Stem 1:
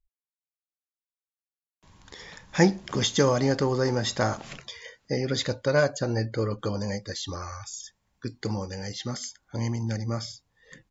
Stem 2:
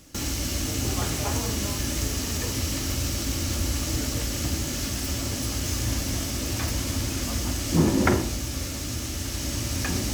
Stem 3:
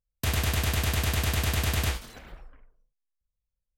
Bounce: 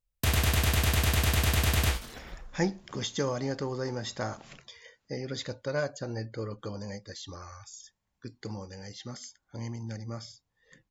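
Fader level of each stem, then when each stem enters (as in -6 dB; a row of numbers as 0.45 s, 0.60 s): -8.5 dB, mute, +1.0 dB; 0.00 s, mute, 0.00 s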